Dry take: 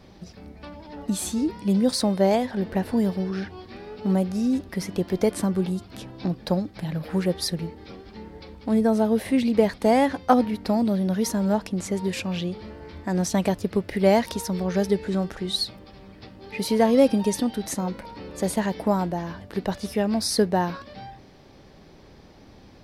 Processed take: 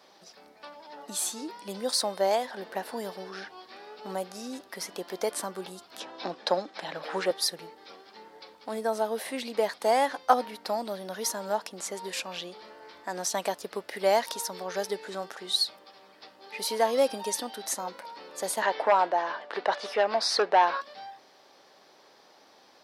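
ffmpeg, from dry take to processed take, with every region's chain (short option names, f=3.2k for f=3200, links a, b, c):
-filter_complex "[0:a]asettb=1/sr,asplit=3[a][b][c];[a]atrim=end=6.004[d];[b]atrim=start=6:end=7.31,asetpts=PTS-STARTPTS,afade=t=in:d=0.004:c=qsin,afade=t=out:st=1.306:d=0.004:c=qsin,acrossover=split=170 7100:gain=0.158 1 0.0794[e][f][g];[e][f][g]amix=inputs=3:normalize=0,acontrast=61,bandreject=f=4.6k:w=20[h];[c]atrim=start=7.306[i];[d][h]acrossfade=d=0.004:c1=hsin:c2=qsin[j];[j][i]acrossfade=d=0.004:c1=qsin:c2=hsin,asettb=1/sr,asplit=3[k][l][m];[k]atrim=end=18.624[n];[l]atrim=start=18.62:end=20.81,asetpts=PTS-STARTPTS,afade=t=in:d=0.004:c=qsin,afade=t=out:st=2.186:d=0.004:c=qsin,highpass=380,lowpass=3.1k,aeval=exprs='0.282*sin(PI/2*1.78*val(0)/0.282)':c=same[o];[m]atrim=start=20.806[p];[n][o]acrossfade=d=0.004:c1=hsin:c2=qsin[q];[q][p]acrossfade=d=0.004:c1=qsin:c2=hsin,highpass=710,equalizer=f=2.3k:t=o:w=0.83:g=-5,volume=1dB"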